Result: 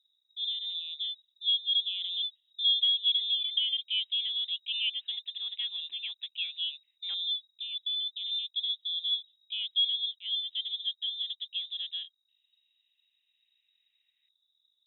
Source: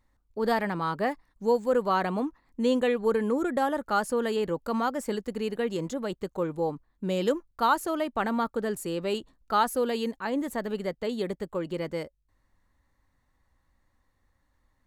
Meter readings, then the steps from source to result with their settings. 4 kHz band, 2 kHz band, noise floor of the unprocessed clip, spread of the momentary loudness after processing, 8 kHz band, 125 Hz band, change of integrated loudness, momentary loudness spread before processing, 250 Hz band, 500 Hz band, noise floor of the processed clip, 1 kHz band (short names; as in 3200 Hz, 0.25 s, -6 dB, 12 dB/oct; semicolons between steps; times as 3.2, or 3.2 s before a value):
+16.5 dB, -11.5 dB, -72 dBFS, 10 LU, under -35 dB, under -40 dB, -1.0 dB, 8 LU, under -40 dB, under -40 dB, -78 dBFS, under -40 dB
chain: LFO low-pass saw up 0.14 Hz 280–1500 Hz; inverted band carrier 3800 Hz; gain -7.5 dB